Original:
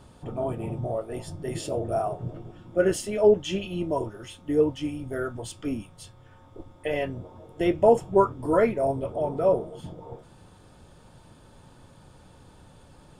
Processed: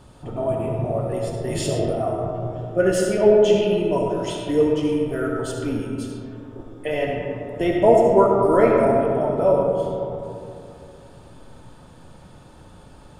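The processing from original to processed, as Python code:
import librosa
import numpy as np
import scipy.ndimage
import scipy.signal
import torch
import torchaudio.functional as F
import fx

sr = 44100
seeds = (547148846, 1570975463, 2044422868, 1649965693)

y = fx.over_compress(x, sr, threshold_db=-31.0, ratio=-1.0, at=(1.47, 2.07), fade=0.02)
y = fx.peak_eq(y, sr, hz=5000.0, db=8.5, octaves=2.1, at=(4.09, 4.72))
y = fx.rev_freeverb(y, sr, rt60_s=2.7, hf_ratio=0.35, predelay_ms=25, drr_db=-0.5)
y = F.gain(torch.from_numpy(y), 2.5).numpy()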